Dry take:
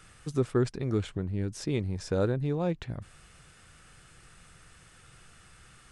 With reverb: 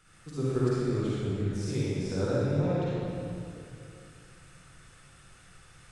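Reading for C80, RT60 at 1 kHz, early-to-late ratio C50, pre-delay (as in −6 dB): −4.0 dB, 2.5 s, −7.0 dB, 39 ms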